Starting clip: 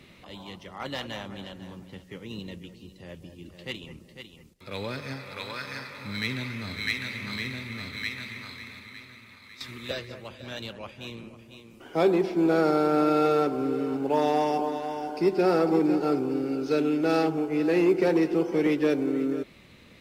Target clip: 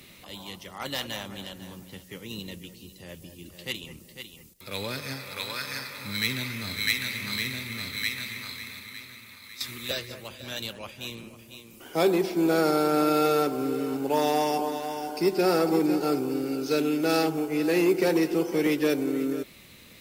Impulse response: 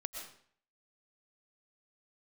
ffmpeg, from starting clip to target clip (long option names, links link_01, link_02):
-af "aemphasis=mode=production:type=75fm"